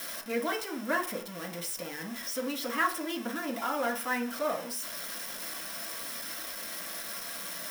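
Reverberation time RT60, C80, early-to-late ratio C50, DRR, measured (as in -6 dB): 0.45 s, 16.0 dB, 11.0 dB, -1.5 dB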